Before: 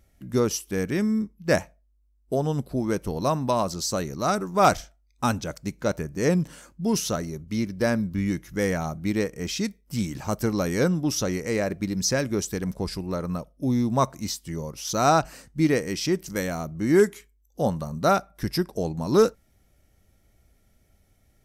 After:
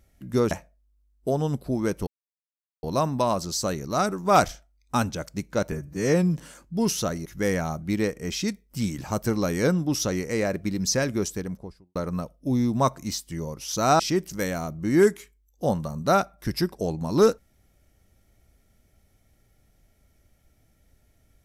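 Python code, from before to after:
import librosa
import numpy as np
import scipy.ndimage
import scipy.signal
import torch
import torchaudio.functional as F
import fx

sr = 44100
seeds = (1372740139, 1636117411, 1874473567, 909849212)

y = fx.studio_fade_out(x, sr, start_s=12.34, length_s=0.78)
y = fx.edit(y, sr, fx.cut(start_s=0.51, length_s=1.05),
    fx.insert_silence(at_s=3.12, length_s=0.76),
    fx.stretch_span(start_s=6.01, length_s=0.43, factor=1.5),
    fx.cut(start_s=7.33, length_s=1.09),
    fx.cut(start_s=15.16, length_s=0.8), tone=tone)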